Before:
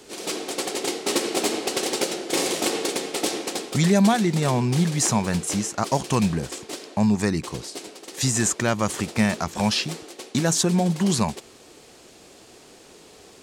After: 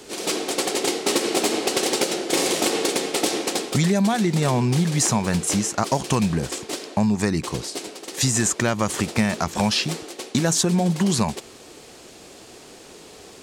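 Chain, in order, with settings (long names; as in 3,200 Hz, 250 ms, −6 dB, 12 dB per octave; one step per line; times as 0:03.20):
downward compressor, threshold −21 dBFS, peak gain reduction 7.5 dB
level +4.5 dB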